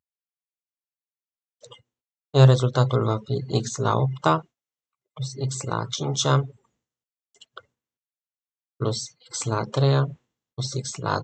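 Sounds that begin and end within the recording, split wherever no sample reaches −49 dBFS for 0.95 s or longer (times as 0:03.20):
0:01.63–0:07.61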